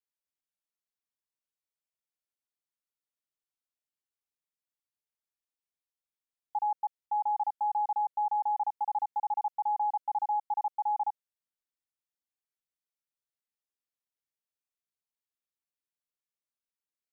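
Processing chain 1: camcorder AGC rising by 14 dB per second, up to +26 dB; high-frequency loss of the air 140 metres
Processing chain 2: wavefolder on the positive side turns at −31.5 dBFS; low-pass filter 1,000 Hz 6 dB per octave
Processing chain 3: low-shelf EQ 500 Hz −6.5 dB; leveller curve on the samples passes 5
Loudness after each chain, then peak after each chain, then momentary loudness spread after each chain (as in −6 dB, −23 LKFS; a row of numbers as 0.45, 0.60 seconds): −32.0, −37.5, −30.5 LKFS; −9.0, −27.0, −26.5 dBFS; 4, 4, 4 LU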